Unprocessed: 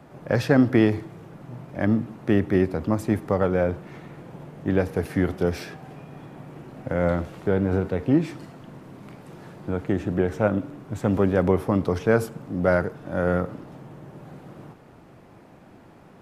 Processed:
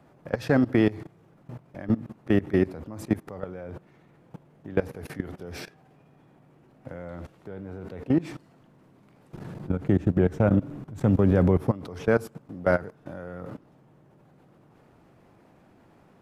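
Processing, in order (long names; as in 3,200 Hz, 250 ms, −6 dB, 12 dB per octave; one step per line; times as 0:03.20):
0:09.34–0:11.71: low-shelf EQ 250 Hz +10.5 dB
output level in coarse steps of 19 dB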